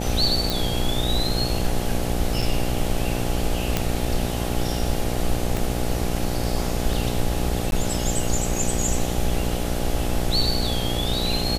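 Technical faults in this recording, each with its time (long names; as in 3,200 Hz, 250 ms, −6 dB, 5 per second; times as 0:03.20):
mains buzz 60 Hz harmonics 14 −27 dBFS
0:00.50: click
0:02.42–0:02.43: drop-out 5.1 ms
0:03.77: click −5 dBFS
0:05.57: click
0:07.71–0:07.72: drop-out 11 ms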